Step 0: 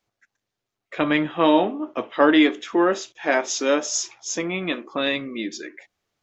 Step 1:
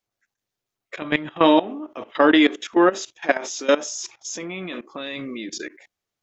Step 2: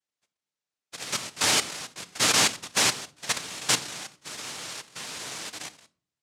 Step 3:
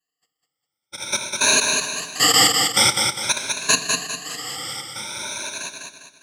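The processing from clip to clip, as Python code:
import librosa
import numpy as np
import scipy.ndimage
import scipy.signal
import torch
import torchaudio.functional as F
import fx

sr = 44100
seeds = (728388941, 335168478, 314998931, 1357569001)

y1 = fx.high_shelf(x, sr, hz=6700.0, db=8.0)
y1 = fx.level_steps(y1, sr, step_db=18)
y1 = y1 * 10.0 ** (4.5 / 20.0)
y2 = np.clip(y1, -10.0 ** (-12.5 / 20.0), 10.0 ** (-12.5 / 20.0))
y2 = fx.noise_vocoder(y2, sr, seeds[0], bands=1)
y2 = fx.room_shoebox(y2, sr, seeds[1], volume_m3=350.0, walls='furnished', distance_m=0.44)
y2 = y2 * 10.0 ** (-5.5 / 20.0)
y3 = fx.spec_ripple(y2, sr, per_octave=1.5, drift_hz=0.49, depth_db=24)
y3 = fx.echo_feedback(y3, sr, ms=201, feedback_pct=40, wet_db=-4.5)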